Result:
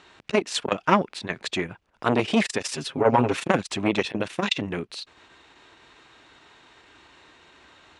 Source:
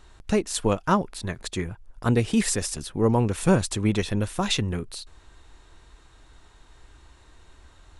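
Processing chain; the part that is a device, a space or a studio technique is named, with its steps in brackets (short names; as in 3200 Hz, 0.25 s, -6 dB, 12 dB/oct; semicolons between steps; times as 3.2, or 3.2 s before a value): public-address speaker with an overloaded transformer (core saturation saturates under 760 Hz; BPF 200–5400 Hz); 2.65–3.43 comb 7.4 ms, depth 88%; bell 2500 Hz +6 dB 0.95 oct; gain +4.5 dB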